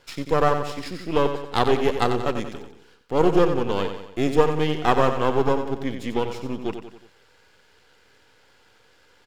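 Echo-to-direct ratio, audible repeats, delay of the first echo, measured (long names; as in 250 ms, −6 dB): −7.5 dB, 4, 91 ms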